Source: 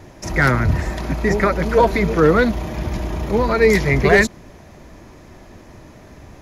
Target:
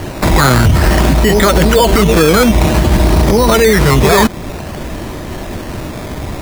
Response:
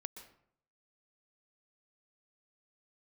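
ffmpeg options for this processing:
-filter_complex "[0:a]asplit=2[link_01][link_02];[link_02]acompressor=threshold=-24dB:ratio=6,volume=0.5dB[link_03];[link_01][link_03]amix=inputs=2:normalize=0,acrusher=samples=12:mix=1:aa=0.000001:lfo=1:lforange=7.2:lforate=0.53,alimiter=level_in=13.5dB:limit=-1dB:release=50:level=0:latency=1,volume=-1dB"

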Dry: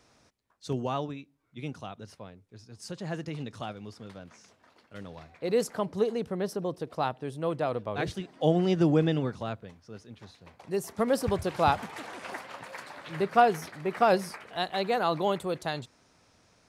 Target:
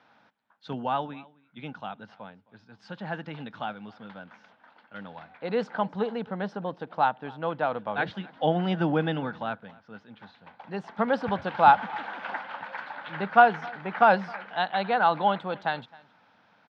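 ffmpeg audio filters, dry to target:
ffmpeg -i in.wav -af "highpass=180,equalizer=frequency=200:width_type=q:width=4:gain=5,equalizer=frequency=380:width_type=q:width=4:gain=-9,equalizer=frequency=850:width_type=q:width=4:gain=10,equalizer=frequency=1500:width_type=q:width=4:gain=10,equalizer=frequency=3300:width_type=q:width=4:gain=4,lowpass=frequency=3700:width=0.5412,lowpass=frequency=3700:width=1.3066,aecho=1:1:264:0.0668" out.wav

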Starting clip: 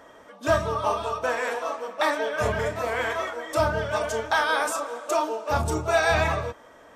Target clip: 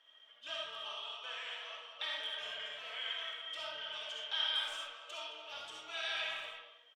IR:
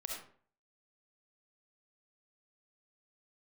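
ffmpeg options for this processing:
-filter_complex "[0:a]bandpass=frequency=3100:width_type=q:width=10:csg=0,asplit=2[link_01][link_02];[link_02]adelay=220,highpass=300,lowpass=3400,asoftclip=type=hard:threshold=-38.5dB,volume=-7dB[link_03];[link_01][link_03]amix=inputs=2:normalize=0[link_04];[1:a]atrim=start_sample=2205,afade=type=out:start_time=0.25:duration=0.01,atrim=end_sample=11466[link_05];[link_04][link_05]afir=irnorm=-1:irlink=0,volume=6dB"

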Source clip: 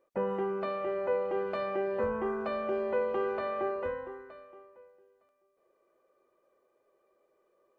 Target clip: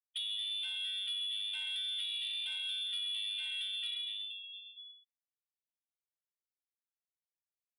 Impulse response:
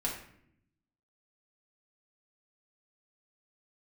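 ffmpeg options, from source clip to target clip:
-filter_complex "[0:a]lowshelf=frequency=80:gain=7,asplit=2[link_01][link_02];[1:a]atrim=start_sample=2205[link_03];[link_02][link_03]afir=irnorm=-1:irlink=0,volume=-27dB[link_04];[link_01][link_04]amix=inputs=2:normalize=0,afftfilt=real='re*gte(hypot(re,im),0.0112)':imag='im*gte(hypot(re,im),0.0112)':win_size=1024:overlap=0.75,aecho=1:1:84.55|125.4:0.282|0.316,lowpass=frequency=3300:width_type=q:width=0.5098,lowpass=frequency=3300:width_type=q:width=0.6013,lowpass=frequency=3300:width_type=q:width=0.9,lowpass=frequency=3300:width_type=q:width=2.563,afreqshift=-3900,highshelf=frequency=2600:gain=2.5,bandreject=frequency=317.6:width_type=h:width=4,bandreject=frequency=635.2:width_type=h:width=4,bandreject=frequency=952.8:width_type=h:width=4,bandreject=frequency=1270.4:width_type=h:width=4,bandreject=frequency=1588:width_type=h:width=4,bandreject=frequency=1905.6:width_type=h:width=4,bandreject=frequency=2223.2:width_type=h:width=4,bandreject=frequency=2540.8:width_type=h:width=4,bandreject=frequency=2858.4:width_type=h:width=4,bandreject=frequency=3176:width_type=h:width=4,bandreject=frequency=3493.6:width_type=h:width=4,bandreject=frequency=3811.2:width_type=h:width=4,bandreject=frequency=4128.8:width_type=h:width=4,bandreject=frequency=4446.4:width_type=h:width=4,bandreject=frequency=4764:width_type=h:width=4,bandreject=frequency=5081.6:width_type=h:width=4,bandreject=frequency=5399.2:width_type=h:width=4,bandreject=frequency=5716.8:width_type=h:width=4,bandreject=frequency=6034.4:width_type=h:width=4,bandreject=frequency=6352:width_type=h:width=4,bandreject=frequency=6669.6:width_type=h:width=4,bandreject=frequency=6987.2:width_type=h:width=4,bandreject=frequency=7304.8:width_type=h:width=4,bandreject=frequency=7622.4:width_type=h:width=4,bandreject=frequency=7940:width_type=h:width=4,bandreject=frequency=8257.6:width_type=h:width=4,bandreject=frequency=8575.2:width_type=h:width=4,bandreject=frequency=8892.8:width_type=h:width=4,bandreject=frequency=9210.4:width_type=h:width=4,bandreject=frequency=9528:width_type=h:width=4,bandreject=frequency=9845.6:width_type=h:width=4,bandreject=frequency=10163.2:width_type=h:width=4,bandreject=frequency=10480.8:width_type=h:width=4,bandreject=frequency=10798.4:width_type=h:width=4,bandreject=frequency=11116:width_type=h:width=4,bandreject=frequency=11433.6:width_type=h:width=4,bandreject=frequency=11751.2:width_type=h:width=4,bandreject=frequency=12068.8:width_type=h:width=4,acompressor=threshold=-37dB:ratio=5,aeval=exprs='0.0422*sin(PI/2*1.58*val(0)/0.0422)':channel_layout=same,volume=-6dB"

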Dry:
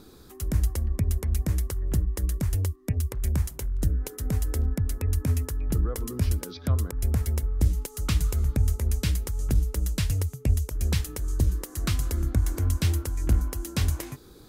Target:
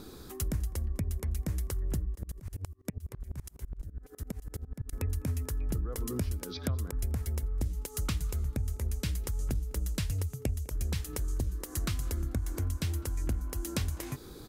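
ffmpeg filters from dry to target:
ffmpeg -i in.wav -filter_complex "[0:a]acompressor=threshold=-33dB:ratio=5,asplit=2[link_01][link_02];[link_02]adelay=204.1,volume=-25dB,highshelf=frequency=4000:gain=-4.59[link_03];[link_01][link_03]amix=inputs=2:normalize=0,asettb=1/sr,asplit=3[link_04][link_05][link_06];[link_04]atrim=end=2.154[link_07];[link_05]atrim=start=2.15:end=4.93,asetpts=PTS-STARTPTS,afade=type=in:duration=0.004:curve=qsin,afade=type=out:start_time=2.776:duration=0.004:curve=qsin,aeval=exprs='val(0)*pow(10,-27*if(lt(mod(-12*n/s,1),2*abs(-12)/1000),1-mod(-12*n/s,1)/(2*abs(-12)/1000),(mod(-12*n/s,1)-2*abs(-12)/1000)/(1-2*abs(-12)/1000))/20)':channel_layout=same[link_08];[link_06]atrim=start=4.926[link_09];[link_07][link_08]acrossfade=duration=0.004:curve1=hsin:curve2=qsin[link_10];[link_10][link_09]acrossfade=duration=0.004:curve1=qsin:curve2=hsin,volume=3dB" out.wav

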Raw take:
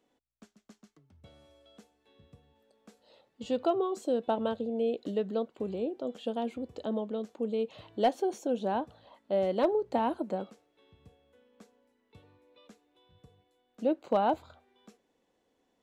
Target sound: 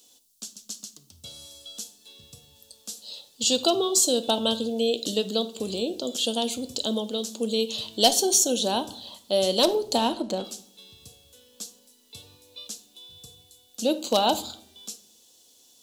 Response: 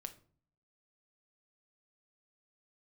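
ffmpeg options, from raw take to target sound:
-filter_complex "[0:a]aexciter=amount=15.1:drive=6.8:freq=3200,asplit=3[link_01][link_02][link_03];[link_01]afade=type=out:start_time=9.97:duration=0.02[link_04];[link_02]adynamicsmooth=sensitivity=6:basefreq=3100,afade=type=in:start_time=9.97:duration=0.02,afade=type=out:start_time=10.43:duration=0.02[link_05];[link_03]afade=type=in:start_time=10.43:duration=0.02[link_06];[link_04][link_05][link_06]amix=inputs=3:normalize=0,asplit=2[link_07][link_08];[1:a]atrim=start_sample=2205,asetrate=29988,aresample=44100[link_09];[link_08][link_09]afir=irnorm=-1:irlink=0,volume=6dB[link_10];[link_07][link_10]amix=inputs=2:normalize=0,volume=-4dB"

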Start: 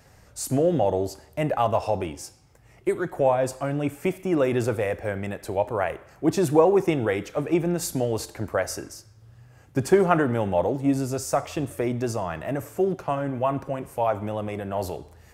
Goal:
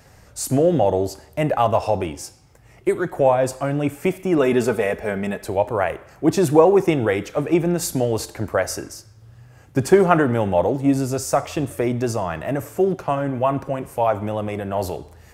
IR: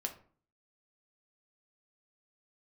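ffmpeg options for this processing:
-filter_complex "[0:a]asettb=1/sr,asplit=3[link_01][link_02][link_03];[link_01]atrim=end=4.384[link_04];[link_02]atrim=start=4.38:end=5.44,asetpts=PTS-STARTPTS,afade=type=in:duration=0.004:curve=qsin,afade=type=out:start_time=1.056:duration=0.004:curve=qsin,aecho=1:1:4.7:0.63,atrim=end_sample=46746[link_05];[link_03]atrim=start=5.436[link_06];[link_04][link_05]acrossfade=duration=0.004:curve1=hsin:curve2=qsin[link_07];[link_07][link_06]acrossfade=duration=0.004:curve1=qsin:curve2=hsin,volume=4.5dB"

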